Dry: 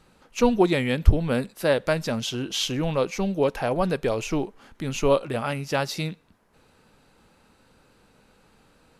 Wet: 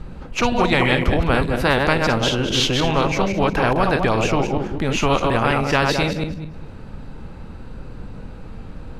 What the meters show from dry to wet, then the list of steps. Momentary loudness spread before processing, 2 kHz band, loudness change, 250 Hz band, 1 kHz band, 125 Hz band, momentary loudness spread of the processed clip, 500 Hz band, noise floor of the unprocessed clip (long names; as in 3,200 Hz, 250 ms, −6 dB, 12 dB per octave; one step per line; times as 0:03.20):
8 LU, +11.0 dB, +6.0 dB, +5.0 dB, +10.0 dB, +6.0 dB, 21 LU, +3.5 dB, −61 dBFS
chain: feedback delay that plays each chunk backwards 104 ms, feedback 44%, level −6 dB
RIAA equalisation playback
every bin compressed towards the loudest bin 4 to 1
level −16 dB